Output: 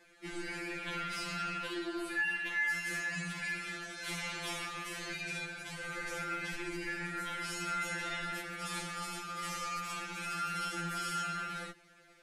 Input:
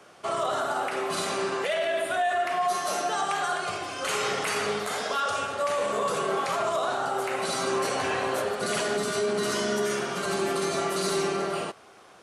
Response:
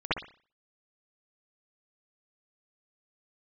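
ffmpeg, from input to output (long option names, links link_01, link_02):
-filter_complex "[0:a]asettb=1/sr,asplit=3[link_01][link_02][link_03];[link_01]atrim=end=0.684[link_04];[link_02]atrim=start=0.68:end=1.58,asetpts=PTS-STARTPTS,afade=type=in:duration=0.004:curve=qsin,afade=type=out:start_time=0.896:duration=0.004:curve=qsin,asplit=2[link_05][link_06];[link_06]highpass=frequency=720:poles=1,volume=11dB,asoftclip=type=tanh:threshold=-17.5dB[link_07];[link_05][link_07]amix=inputs=2:normalize=0,lowpass=frequency=3300:poles=1,volume=-6dB[link_08];[link_03]atrim=start=1.576[link_09];[link_04][link_08]acrossfade=duration=0.004:curve1=hsin:curve2=qsin[link_10];[link_10][link_09]acrossfade=duration=0.004:curve1=qsin:curve2=hsin,aeval=exprs='val(0)*sin(2*PI*1000*n/s)':channel_layout=same,acrossover=split=110|900[link_11][link_12][link_13];[link_12]asoftclip=type=tanh:threshold=-35.5dB[link_14];[link_11][link_14][link_13]amix=inputs=3:normalize=0,afftfilt=real='re*2.83*eq(mod(b,8),0)':imag='im*2.83*eq(mod(b,8),0)':win_size=2048:overlap=0.75,volume=-4.5dB"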